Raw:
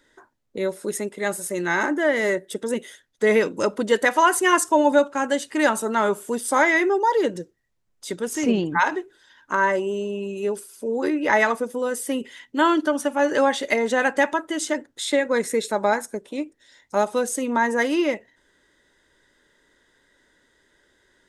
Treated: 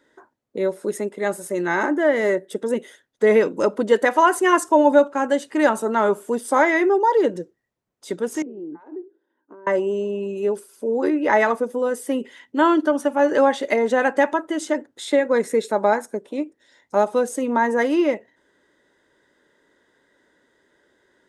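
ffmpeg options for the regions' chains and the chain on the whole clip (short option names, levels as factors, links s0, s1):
-filter_complex "[0:a]asettb=1/sr,asplit=3[s0][s1][s2];[s0]atrim=end=8.424[s3];[s1]atrim=start=8.42:end=9.67,asetpts=PTS-STARTPTS,afade=t=in:d=0.004:c=qsin,afade=t=out:st=1.246:d=0.004:c=qsin,acompressor=threshold=0.0355:ratio=8:attack=3.2:release=140:knee=1:detection=peak,bandpass=f=340:t=q:w=3[s4];[s2]atrim=start=9.666[s5];[s3][s4]acrossfade=d=0.004:c1=hsin:c2=qsin[s6];[s6][s5]acrossfade=d=0.004:c1=qsin:c2=hsin,highpass=f=290:p=1,tiltshelf=f=1400:g=6"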